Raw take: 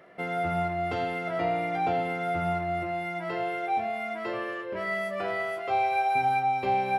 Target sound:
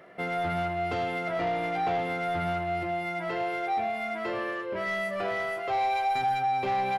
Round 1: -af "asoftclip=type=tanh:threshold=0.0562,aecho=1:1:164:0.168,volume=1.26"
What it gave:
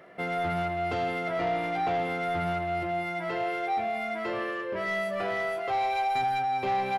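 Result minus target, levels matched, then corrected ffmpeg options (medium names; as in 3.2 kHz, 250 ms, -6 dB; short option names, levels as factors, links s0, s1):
echo 63 ms late
-af "asoftclip=type=tanh:threshold=0.0562,aecho=1:1:101:0.168,volume=1.26"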